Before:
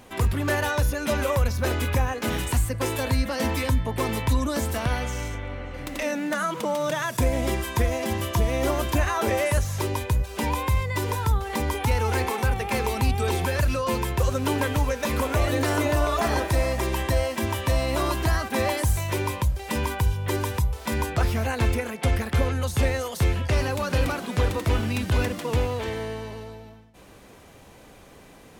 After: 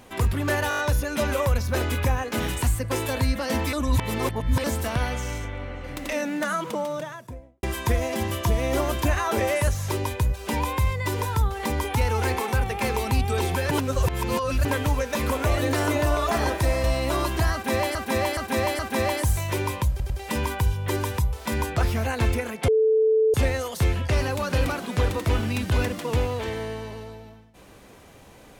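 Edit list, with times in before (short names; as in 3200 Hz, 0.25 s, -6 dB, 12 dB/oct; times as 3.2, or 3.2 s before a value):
0.69 stutter 0.02 s, 6 plays
3.63–4.54 reverse
6.39–7.53 studio fade out
13.61–14.55 reverse
16.74–17.7 cut
18.39–18.81 loop, 4 plays
19.5 stutter 0.10 s, 3 plays
22.08–22.74 bleep 439 Hz -16 dBFS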